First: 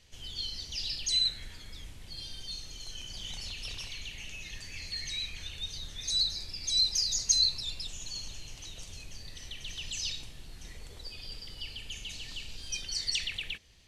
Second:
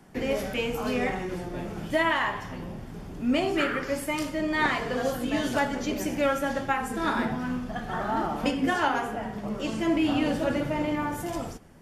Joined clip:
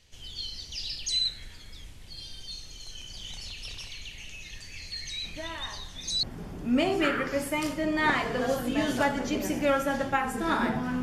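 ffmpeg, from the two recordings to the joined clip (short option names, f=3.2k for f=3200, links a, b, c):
-filter_complex "[1:a]asplit=2[a][b];[0:a]apad=whole_dur=11.02,atrim=end=11.02,atrim=end=6.232[c];[b]atrim=start=2.788:end=7.58[d];[a]atrim=start=1.8:end=2.79,asetpts=PTS-STARTPTS,volume=-15dB,afade=t=in:d=0.004:c=hsin,afade=t=out:st=0.986:d=0.004:c=hsin,adelay=5240[e];[c][d]acrossfade=d=0.004:c1=hsin:c2=hsin[f];[f][e]amix=inputs=2:normalize=0"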